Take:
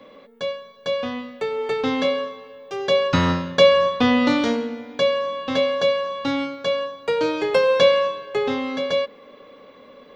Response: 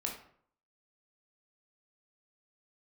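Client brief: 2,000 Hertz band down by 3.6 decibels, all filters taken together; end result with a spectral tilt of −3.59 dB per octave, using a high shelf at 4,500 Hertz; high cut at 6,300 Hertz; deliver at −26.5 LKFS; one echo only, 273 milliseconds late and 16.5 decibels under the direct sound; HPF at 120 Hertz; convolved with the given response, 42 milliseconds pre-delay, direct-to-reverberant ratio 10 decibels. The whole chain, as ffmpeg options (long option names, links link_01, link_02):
-filter_complex "[0:a]highpass=120,lowpass=6300,equalizer=frequency=2000:width_type=o:gain=-3.5,highshelf=frequency=4500:gain=-4.5,aecho=1:1:273:0.15,asplit=2[link_01][link_02];[1:a]atrim=start_sample=2205,adelay=42[link_03];[link_02][link_03]afir=irnorm=-1:irlink=0,volume=-11.5dB[link_04];[link_01][link_04]amix=inputs=2:normalize=0,volume=-4.5dB"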